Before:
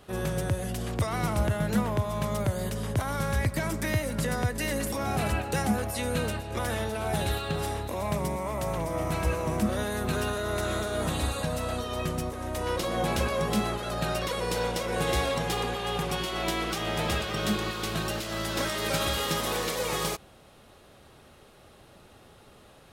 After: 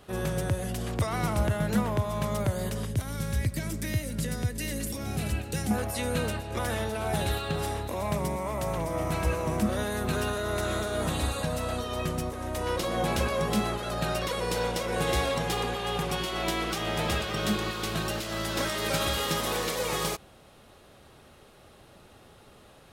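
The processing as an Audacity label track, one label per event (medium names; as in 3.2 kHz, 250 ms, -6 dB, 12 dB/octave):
2.850000	5.710000	peaking EQ 950 Hz -12.5 dB 2 oct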